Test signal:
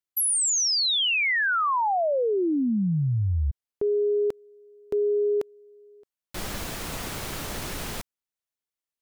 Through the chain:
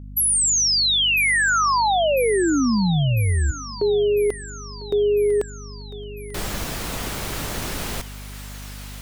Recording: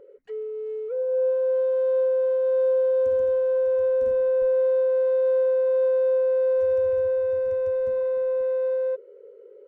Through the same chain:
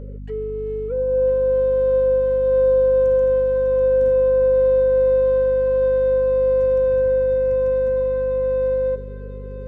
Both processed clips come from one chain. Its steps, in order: thinning echo 1000 ms, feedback 66%, high-pass 1.1 kHz, level -10.5 dB; hum 50 Hz, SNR 15 dB; trim +4.5 dB

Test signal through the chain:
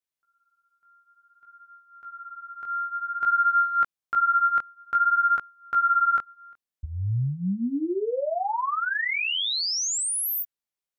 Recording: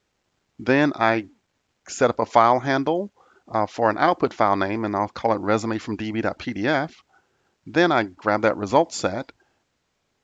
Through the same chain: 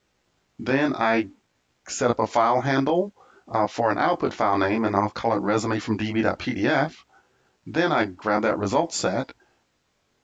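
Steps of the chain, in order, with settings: in parallel at +0.5 dB: compressor with a negative ratio -22 dBFS, ratio -0.5; on the sum: chorus 0.54 Hz, delay 15.5 ms, depth 7.5 ms; trim -2.5 dB

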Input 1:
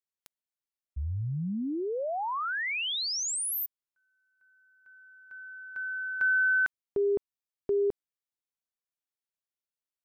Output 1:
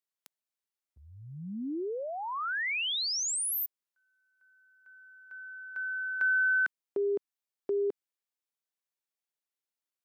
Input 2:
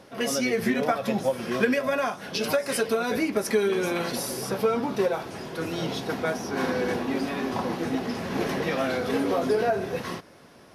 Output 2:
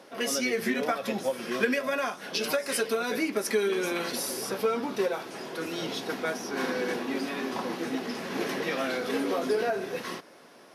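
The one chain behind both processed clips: dynamic bell 720 Hz, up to -5 dB, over -38 dBFS, Q 0.98; high-pass 270 Hz 12 dB/octave

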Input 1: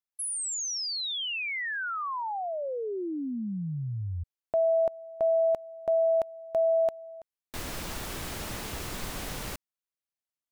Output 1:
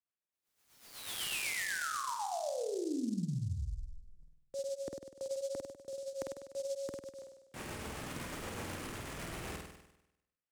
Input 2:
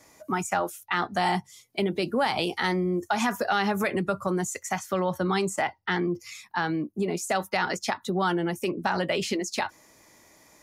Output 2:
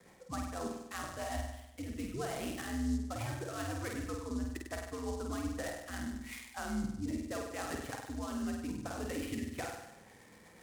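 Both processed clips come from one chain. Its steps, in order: dynamic bell 410 Hz, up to +5 dB, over -43 dBFS, Q 3.9; reverse; compression 12:1, threshold -36 dBFS; reverse; rotary cabinet horn 8 Hz; on a send: flutter echo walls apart 8.5 m, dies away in 0.89 s; on the sum: mistuned SSB -110 Hz 160–3500 Hz; delay time shaken by noise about 6 kHz, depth 0.05 ms; trim +1 dB

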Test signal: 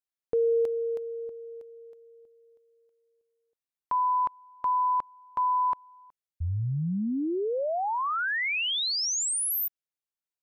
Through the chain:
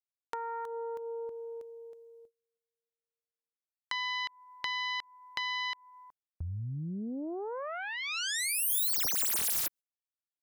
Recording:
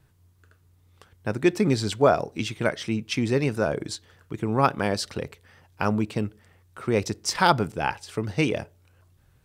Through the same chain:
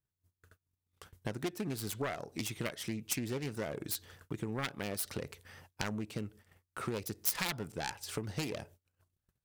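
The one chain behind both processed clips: self-modulated delay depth 0.5 ms; compression 5:1, threshold -36 dBFS; gate -55 dBFS, range -30 dB; treble shelf 5.7 kHz +8.5 dB

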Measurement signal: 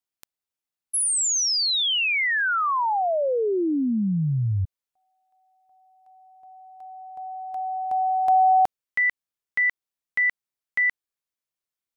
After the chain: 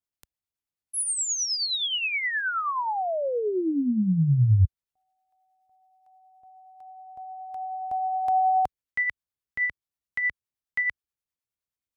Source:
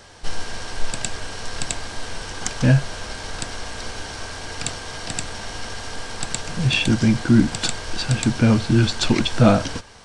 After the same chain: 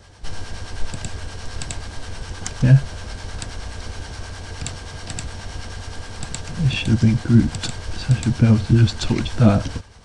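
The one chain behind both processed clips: peaking EQ 64 Hz +12.5 dB 2.7 oct; harmonic tremolo 9.5 Hz, depth 50%, crossover 640 Hz; trim -2.5 dB

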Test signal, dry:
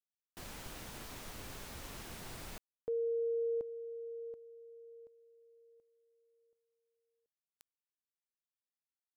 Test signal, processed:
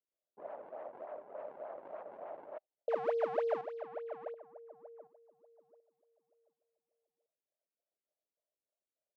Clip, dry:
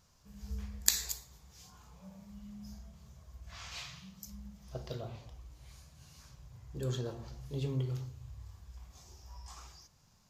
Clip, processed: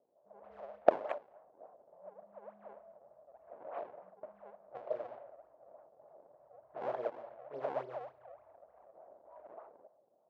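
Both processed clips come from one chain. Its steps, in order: decimation with a swept rate 41×, swing 160% 3.4 Hz; level-controlled noise filter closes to 460 Hz, open at -36 dBFS; ladder band-pass 660 Hz, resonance 75%; trim +13 dB

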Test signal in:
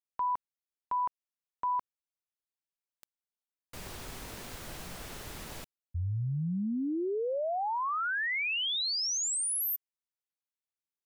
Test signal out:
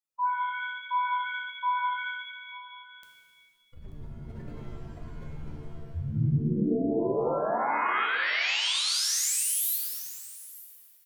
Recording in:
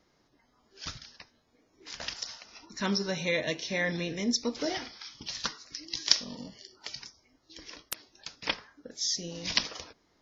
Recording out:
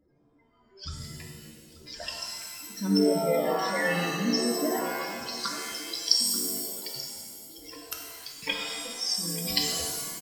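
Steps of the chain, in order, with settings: spectral contrast enhancement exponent 3.1; delay 885 ms -18 dB; pitch-shifted reverb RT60 1.5 s, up +7 st, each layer -2 dB, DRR 0.5 dB

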